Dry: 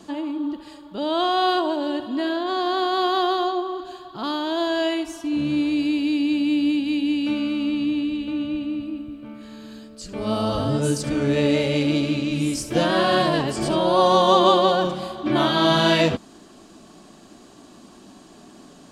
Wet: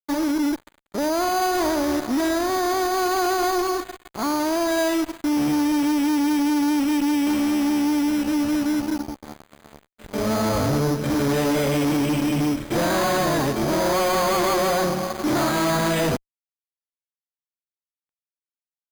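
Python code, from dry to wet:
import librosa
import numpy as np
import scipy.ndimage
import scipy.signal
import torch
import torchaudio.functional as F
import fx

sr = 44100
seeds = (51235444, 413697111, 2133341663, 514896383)

y = fx.fuzz(x, sr, gain_db=29.0, gate_db=-35.0)
y = np.repeat(scipy.signal.resample_poly(y, 1, 8), 8)[:len(y)]
y = y * librosa.db_to_amplitude(-5.5)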